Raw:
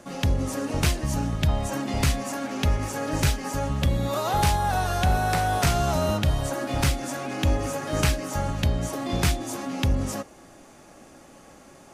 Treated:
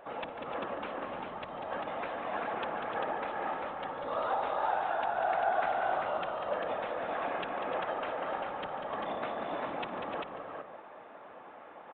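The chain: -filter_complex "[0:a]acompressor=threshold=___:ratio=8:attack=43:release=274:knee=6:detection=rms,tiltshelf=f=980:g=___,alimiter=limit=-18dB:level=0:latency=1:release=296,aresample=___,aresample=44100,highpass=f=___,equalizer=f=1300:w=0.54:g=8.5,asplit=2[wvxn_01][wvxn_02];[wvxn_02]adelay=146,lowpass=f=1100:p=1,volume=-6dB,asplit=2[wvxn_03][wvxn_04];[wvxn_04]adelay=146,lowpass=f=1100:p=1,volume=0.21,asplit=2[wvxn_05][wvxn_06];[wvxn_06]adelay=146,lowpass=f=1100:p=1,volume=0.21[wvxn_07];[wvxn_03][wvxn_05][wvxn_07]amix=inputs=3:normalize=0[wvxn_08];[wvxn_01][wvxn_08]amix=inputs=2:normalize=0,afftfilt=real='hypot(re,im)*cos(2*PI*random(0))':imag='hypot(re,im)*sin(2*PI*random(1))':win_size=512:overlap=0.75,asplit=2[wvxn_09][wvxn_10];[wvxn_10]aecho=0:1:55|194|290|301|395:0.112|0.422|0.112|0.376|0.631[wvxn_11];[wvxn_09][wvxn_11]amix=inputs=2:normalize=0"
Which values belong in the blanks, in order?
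-28dB, 7.5, 8000, 620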